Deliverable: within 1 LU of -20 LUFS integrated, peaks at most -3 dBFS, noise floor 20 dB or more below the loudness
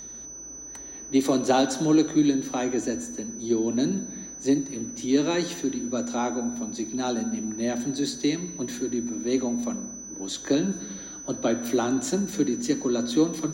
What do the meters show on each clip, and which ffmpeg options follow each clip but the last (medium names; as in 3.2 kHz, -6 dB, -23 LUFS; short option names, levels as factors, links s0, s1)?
hum 60 Hz; highest harmonic 240 Hz; hum level -42 dBFS; steady tone 6 kHz; tone level -38 dBFS; loudness -26.5 LUFS; peak level -10.5 dBFS; loudness target -20.0 LUFS
-> -af "bandreject=f=60:t=h:w=4,bandreject=f=120:t=h:w=4,bandreject=f=180:t=h:w=4,bandreject=f=240:t=h:w=4"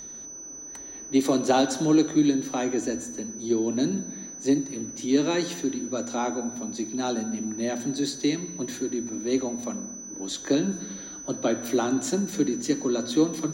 hum not found; steady tone 6 kHz; tone level -38 dBFS
-> -af "bandreject=f=6000:w=30"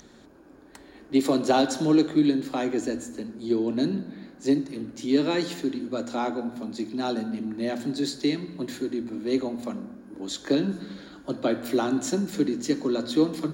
steady tone not found; loudness -27.0 LUFS; peak level -10.5 dBFS; loudness target -20.0 LUFS
-> -af "volume=2.24"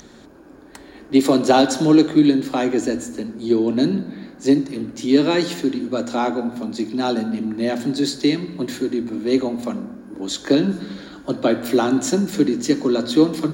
loudness -20.0 LUFS; peak level -3.5 dBFS; noise floor -44 dBFS